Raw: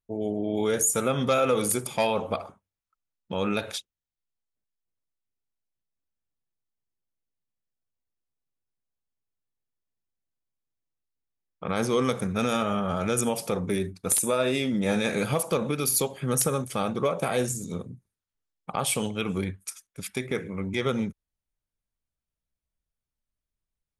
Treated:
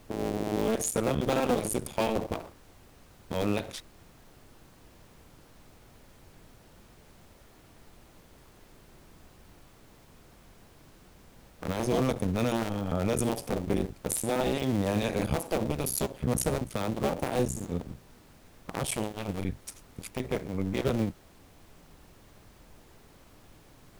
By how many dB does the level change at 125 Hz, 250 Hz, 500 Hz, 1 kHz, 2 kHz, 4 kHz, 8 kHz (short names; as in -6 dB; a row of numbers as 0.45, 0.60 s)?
-0.5, -2.0, -3.5, -4.0, -5.5, -5.5, -7.5 dB